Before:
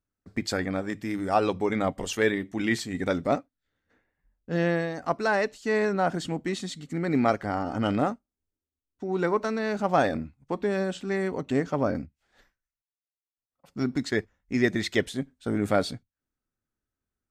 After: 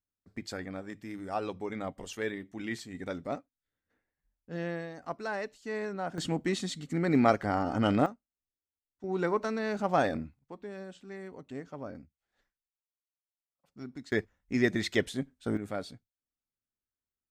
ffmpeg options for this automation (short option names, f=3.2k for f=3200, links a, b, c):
-af "asetnsamples=n=441:p=0,asendcmd='6.18 volume volume -0.5dB;8.06 volume volume -13dB;9.04 volume volume -4dB;10.39 volume volume -15.5dB;14.12 volume volume -3dB;15.57 volume volume -12.5dB',volume=-10.5dB"